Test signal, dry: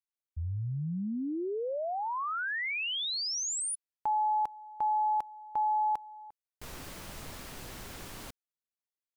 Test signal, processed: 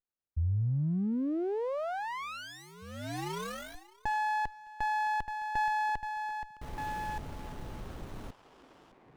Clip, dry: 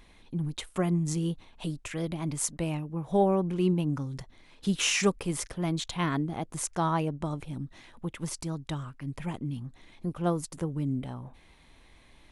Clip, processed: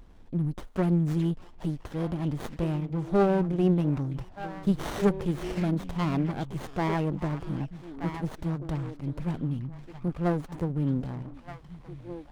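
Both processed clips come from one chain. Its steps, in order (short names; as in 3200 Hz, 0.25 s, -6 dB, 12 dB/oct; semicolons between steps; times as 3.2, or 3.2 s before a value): tilt -1.5 dB/oct; delay with a stepping band-pass 0.612 s, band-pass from 2600 Hz, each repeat -1.4 oct, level -4 dB; running maximum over 17 samples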